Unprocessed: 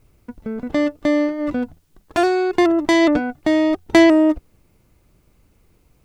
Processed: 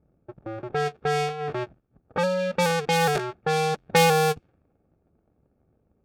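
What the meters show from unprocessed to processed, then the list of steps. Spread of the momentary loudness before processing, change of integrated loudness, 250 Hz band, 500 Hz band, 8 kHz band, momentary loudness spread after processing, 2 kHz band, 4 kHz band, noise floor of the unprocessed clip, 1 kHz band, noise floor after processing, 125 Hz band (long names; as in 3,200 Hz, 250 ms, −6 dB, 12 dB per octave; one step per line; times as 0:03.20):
15 LU, −7.0 dB, −17.5 dB, −5.5 dB, +3.5 dB, 15 LU, −4.0 dB, −1.0 dB, −59 dBFS, +0.5 dB, −70 dBFS, +11.5 dB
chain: sub-harmonics by changed cycles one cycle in 2, inverted
notch comb filter 1,000 Hz
low-pass that shuts in the quiet parts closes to 870 Hz, open at −10.5 dBFS
level −6.5 dB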